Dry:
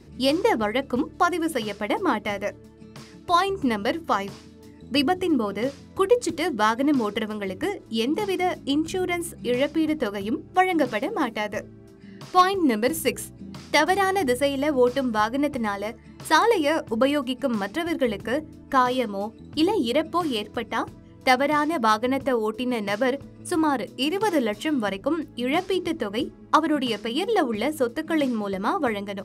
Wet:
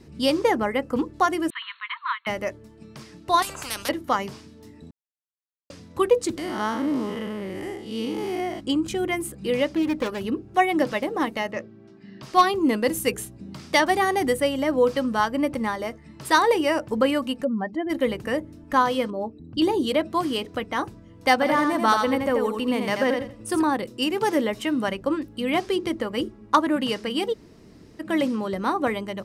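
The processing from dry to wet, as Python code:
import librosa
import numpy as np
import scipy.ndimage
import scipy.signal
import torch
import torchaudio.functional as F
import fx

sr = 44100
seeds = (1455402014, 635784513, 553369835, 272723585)

y = fx.peak_eq(x, sr, hz=3700.0, db=-11.5, octaves=0.5, at=(0.55, 0.96))
y = fx.brickwall_bandpass(y, sr, low_hz=930.0, high_hz=4400.0, at=(1.5, 2.27))
y = fx.spectral_comp(y, sr, ratio=10.0, at=(3.42, 3.89))
y = fx.spec_blur(y, sr, span_ms=177.0, at=(6.37, 8.59), fade=0.02)
y = fx.self_delay(y, sr, depth_ms=0.23, at=(9.76, 10.21))
y = fx.cheby1_bandpass(y, sr, low_hz=160.0, high_hz=4200.0, order=2, at=(11.51, 12.23))
y = fx.spec_expand(y, sr, power=2.0, at=(17.43, 17.89), fade=0.02)
y = fx.envelope_sharpen(y, sr, power=1.5, at=(19.1, 19.62))
y = fx.echo_feedback(y, sr, ms=85, feedback_pct=23, wet_db=-5.0, at=(21.41, 23.6), fade=0.02)
y = fx.edit(y, sr, fx.silence(start_s=4.91, length_s=0.79),
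    fx.room_tone_fill(start_s=27.33, length_s=0.67, crossfade_s=0.02), tone=tone)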